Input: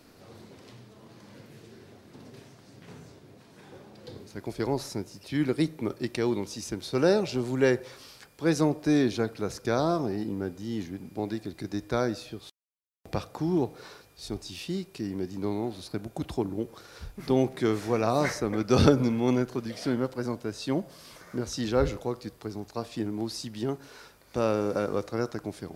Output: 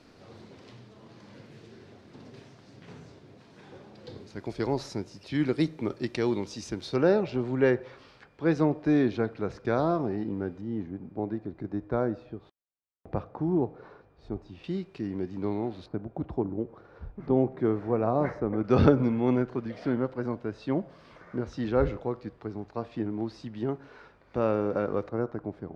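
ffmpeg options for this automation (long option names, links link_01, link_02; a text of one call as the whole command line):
ffmpeg -i in.wav -af "asetnsamples=nb_out_samples=441:pad=0,asendcmd='6.96 lowpass f 2400;10.61 lowpass f 1200;14.64 lowpass f 2700;15.86 lowpass f 1100;18.64 lowpass f 2100;25.09 lowpass f 1200',lowpass=5400" out.wav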